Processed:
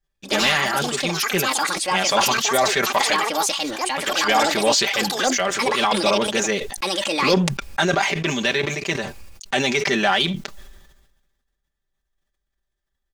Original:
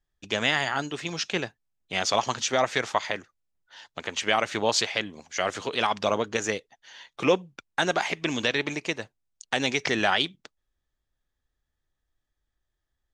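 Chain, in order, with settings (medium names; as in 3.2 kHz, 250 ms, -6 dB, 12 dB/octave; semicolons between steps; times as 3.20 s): comb 5.1 ms, depth 82%; waveshaping leveller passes 1; ever faster or slower copies 86 ms, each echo +6 st, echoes 2; decay stretcher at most 46 dB/s; trim -1 dB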